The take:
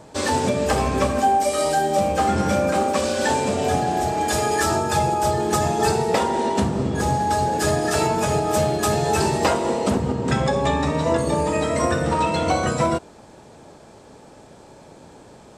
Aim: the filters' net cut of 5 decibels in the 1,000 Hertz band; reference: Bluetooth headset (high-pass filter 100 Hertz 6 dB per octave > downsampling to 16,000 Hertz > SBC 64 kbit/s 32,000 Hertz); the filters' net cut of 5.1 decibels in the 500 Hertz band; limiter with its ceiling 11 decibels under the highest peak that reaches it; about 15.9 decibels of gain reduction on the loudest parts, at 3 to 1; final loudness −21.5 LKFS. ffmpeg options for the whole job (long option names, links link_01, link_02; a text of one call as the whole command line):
ffmpeg -i in.wav -af "equalizer=frequency=500:width_type=o:gain=-5,equalizer=frequency=1000:width_type=o:gain=-4.5,acompressor=threshold=-41dB:ratio=3,alimiter=level_in=10.5dB:limit=-24dB:level=0:latency=1,volume=-10.5dB,highpass=frequency=100:poles=1,aresample=16000,aresample=44100,volume=22.5dB" -ar 32000 -c:a sbc -b:a 64k out.sbc